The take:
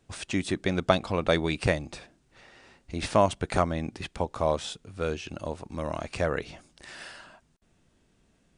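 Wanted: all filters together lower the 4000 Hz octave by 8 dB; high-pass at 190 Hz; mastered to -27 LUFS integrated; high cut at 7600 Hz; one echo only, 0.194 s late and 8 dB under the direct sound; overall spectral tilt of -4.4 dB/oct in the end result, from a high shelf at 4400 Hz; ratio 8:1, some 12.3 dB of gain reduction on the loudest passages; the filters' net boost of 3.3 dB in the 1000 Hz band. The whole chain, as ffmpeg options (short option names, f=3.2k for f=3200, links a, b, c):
-af "highpass=190,lowpass=7.6k,equalizer=f=1k:t=o:g=5,equalizer=f=4k:t=o:g=-5.5,highshelf=f=4.4k:g=-9,acompressor=threshold=-28dB:ratio=8,aecho=1:1:194:0.398,volume=9dB"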